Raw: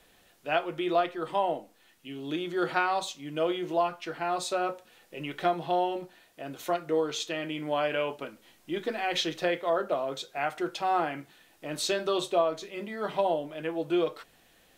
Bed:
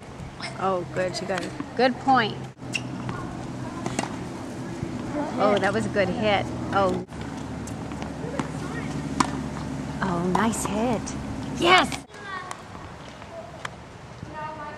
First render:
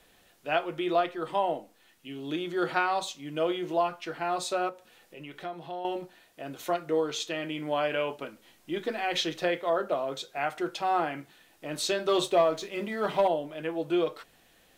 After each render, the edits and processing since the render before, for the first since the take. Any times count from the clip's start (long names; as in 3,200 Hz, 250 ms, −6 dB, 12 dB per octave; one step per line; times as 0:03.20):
0:04.69–0:05.85: downward compressor 1.5 to 1, threshold −52 dBFS
0:12.08–0:13.28: leveller curve on the samples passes 1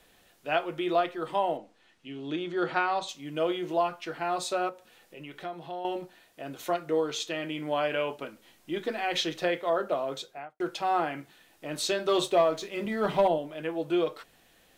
0:01.57–0:03.09: high-frequency loss of the air 75 metres
0:10.16–0:10.60: fade out and dull
0:12.85–0:13.38: low-shelf EQ 200 Hz +9.5 dB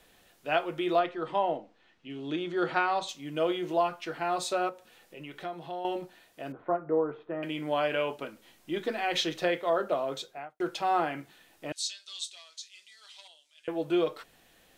0:00.99–0:02.10: high-frequency loss of the air 100 metres
0:06.52–0:07.43: low-pass filter 1,400 Hz 24 dB per octave
0:11.72–0:13.68: flat-topped band-pass 5,900 Hz, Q 1.2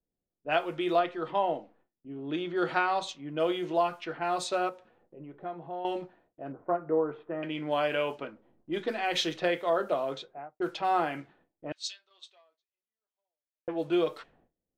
low-pass that shuts in the quiet parts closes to 340 Hz, open at −26.5 dBFS
noise gate with hold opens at −56 dBFS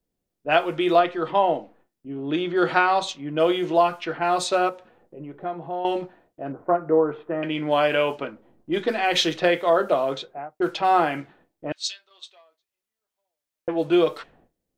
level +8 dB